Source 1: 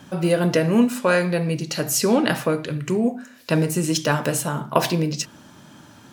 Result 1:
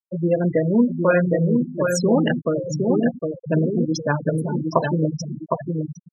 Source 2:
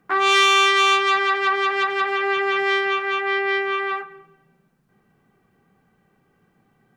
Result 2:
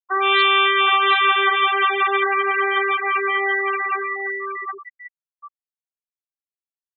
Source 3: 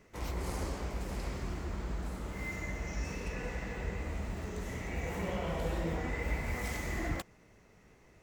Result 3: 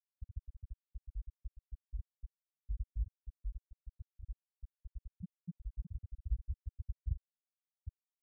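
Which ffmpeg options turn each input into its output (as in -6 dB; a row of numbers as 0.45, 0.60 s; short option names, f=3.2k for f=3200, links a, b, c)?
-af "aecho=1:1:760|1520|2280|3040|3800:0.668|0.281|0.118|0.0495|0.0208,afftfilt=real='re*gte(hypot(re,im),0.224)':imag='im*gte(hypot(re,im),0.224)':win_size=1024:overlap=0.75"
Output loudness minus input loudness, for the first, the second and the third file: 0.0, +1.0, -10.0 LU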